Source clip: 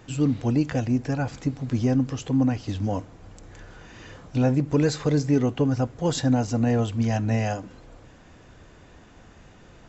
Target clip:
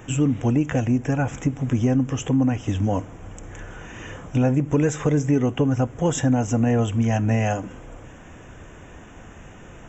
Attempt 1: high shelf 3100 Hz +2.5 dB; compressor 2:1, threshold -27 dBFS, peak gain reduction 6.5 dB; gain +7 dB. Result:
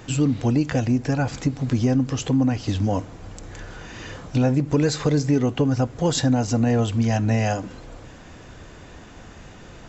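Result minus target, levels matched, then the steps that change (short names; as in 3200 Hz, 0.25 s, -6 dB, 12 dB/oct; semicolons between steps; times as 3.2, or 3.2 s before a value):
4000 Hz band +6.5 dB
add after compressor: Butterworth band-stop 4400 Hz, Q 1.6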